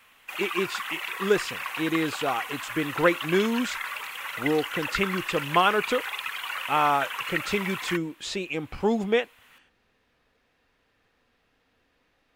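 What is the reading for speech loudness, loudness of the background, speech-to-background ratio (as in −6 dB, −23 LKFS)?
−27.5 LKFS, −32.0 LKFS, 4.5 dB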